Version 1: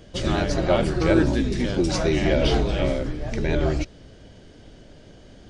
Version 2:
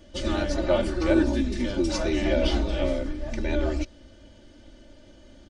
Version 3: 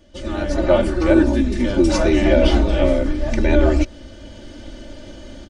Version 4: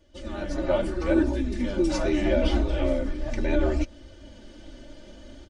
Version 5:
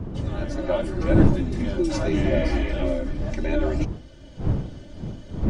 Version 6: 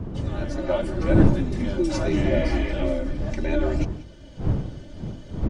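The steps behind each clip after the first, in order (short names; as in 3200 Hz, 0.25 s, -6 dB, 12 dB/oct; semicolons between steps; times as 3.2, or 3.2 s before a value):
comb 3.4 ms, depth 94%; gain -6.5 dB
dynamic EQ 4600 Hz, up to -6 dB, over -48 dBFS, Q 0.88; AGC gain up to 15 dB; gain -1 dB
flange 0.73 Hz, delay 1.9 ms, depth 5.6 ms, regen -41%; gain -5 dB
wind noise 170 Hz -26 dBFS; spectral repair 2.33–2.7, 1500–4000 Hz before
echo 0.185 s -17.5 dB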